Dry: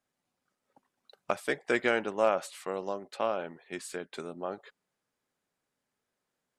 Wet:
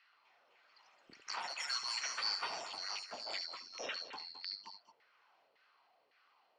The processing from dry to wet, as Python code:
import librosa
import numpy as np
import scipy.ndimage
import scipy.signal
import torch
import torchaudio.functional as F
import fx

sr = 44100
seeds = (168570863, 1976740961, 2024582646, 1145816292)

y = fx.band_swap(x, sr, width_hz=4000)
y = fx.filter_lfo_bandpass(y, sr, shape='saw_down', hz=1.8, low_hz=460.0, high_hz=1800.0, q=3.9)
y = fx.transient(y, sr, attack_db=-7, sustain_db=4)
y = fx.echo_pitch(y, sr, ms=253, semitones=4, count=3, db_per_echo=-3.0)
y = fx.lowpass_res(y, sr, hz=2900.0, q=2.1)
y = fx.notch(y, sr, hz=1700.0, q=17.0)
y = fx.echo_multitap(y, sr, ms=(71, 215), db=(-13.0, -13.0))
y = fx.band_squash(y, sr, depth_pct=40)
y = F.gain(torch.from_numpy(y), 17.5).numpy()